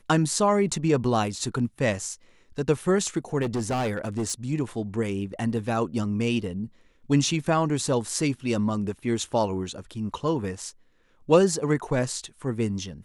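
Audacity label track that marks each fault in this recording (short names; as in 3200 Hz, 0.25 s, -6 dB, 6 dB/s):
3.410000	4.330000	clipped -23 dBFS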